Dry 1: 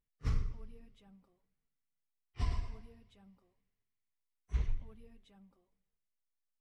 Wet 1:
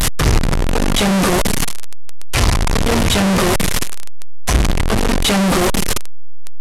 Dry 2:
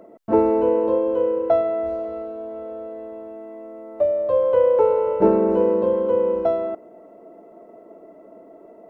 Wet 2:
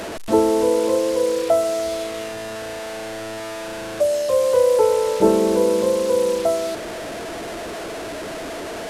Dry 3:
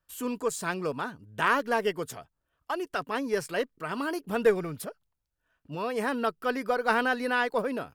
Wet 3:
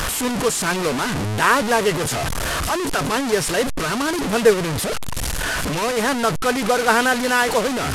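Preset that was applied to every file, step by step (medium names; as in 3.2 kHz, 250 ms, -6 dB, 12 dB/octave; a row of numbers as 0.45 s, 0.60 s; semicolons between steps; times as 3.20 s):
one-bit delta coder 64 kbps, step -25 dBFS; peak normalisation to -3 dBFS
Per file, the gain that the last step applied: +17.5 dB, +0.5 dB, +8.5 dB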